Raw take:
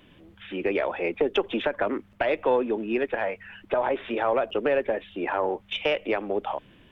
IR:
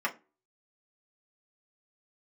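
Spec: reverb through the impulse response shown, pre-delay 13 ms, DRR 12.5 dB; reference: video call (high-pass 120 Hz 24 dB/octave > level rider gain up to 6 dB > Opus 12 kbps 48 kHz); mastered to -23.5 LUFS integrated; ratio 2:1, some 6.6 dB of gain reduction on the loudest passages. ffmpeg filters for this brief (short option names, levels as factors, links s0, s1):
-filter_complex "[0:a]acompressor=threshold=0.0282:ratio=2,asplit=2[s0][s1];[1:a]atrim=start_sample=2205,adelay=13[s2];[s1][s2]afir=irnorm=-1:irlink=0,volume=0.0841[s3];[s0][s3]amix=inputs=2:normalize=0,highpass=f=120:w=0.5412,highpass=f=120:w=1.3066,dynaudnorm=m=2,volume=2.82" -ar 48000 -c:a libopus -b:a 12k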